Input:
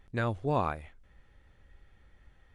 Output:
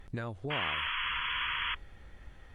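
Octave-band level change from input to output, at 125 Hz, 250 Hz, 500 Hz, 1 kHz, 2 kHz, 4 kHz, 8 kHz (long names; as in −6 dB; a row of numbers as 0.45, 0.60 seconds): −6.5 dB, −7.0 dB, −8.5 dB, −1.5 dB, +10.0 dB, +20.5 dB, can't be measured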